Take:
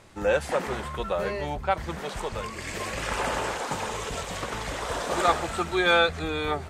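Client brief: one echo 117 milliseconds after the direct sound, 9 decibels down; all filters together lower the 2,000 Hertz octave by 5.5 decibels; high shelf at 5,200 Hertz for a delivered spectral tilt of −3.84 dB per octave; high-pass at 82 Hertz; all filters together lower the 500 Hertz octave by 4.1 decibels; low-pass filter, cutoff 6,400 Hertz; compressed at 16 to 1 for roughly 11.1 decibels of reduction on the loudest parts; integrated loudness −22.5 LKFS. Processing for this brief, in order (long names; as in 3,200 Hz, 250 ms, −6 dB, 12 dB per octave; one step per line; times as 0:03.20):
high-pass filter 82 Hz
low-pass filter 6,400 Hz
parametric band 500 Hz −4.5 dB
parametric band 2,000 Hz −8 dB
high-shelf EQ 5,200 Hz +3.5 dB
downward compressor 16 to 1, threshold −30 dBFS
single-tap delay 117 ms −9 dB
level +12.5 dB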